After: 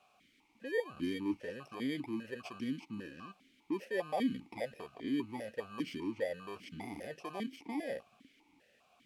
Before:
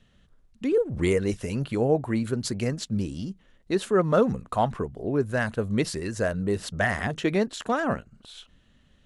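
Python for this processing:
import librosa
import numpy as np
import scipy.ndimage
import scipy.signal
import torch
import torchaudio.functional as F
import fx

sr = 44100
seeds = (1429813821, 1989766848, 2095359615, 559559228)

p1 = fx.bit_reversed(x, sr, seeds[0], block=32)
p2 = fx.env_lowpass(p1, sr, base_hz=1400.0, full_db=-24.0)
p3 = fx.over_compress(p2, sr, threshold_db=-32.0, ratio=-1.0)
p4 = p2 + F.gain(torch.from_numpy(p3), -2.0).numpy()
p5 = fx.quant_dither(p4, sr, seeds[1], bits=8, dither='triangular')
p6 = fx.vowel_held(p5, sr, hz=5.0)
y = F.gain(torch.from_numpy(p6), -2.5).numpy()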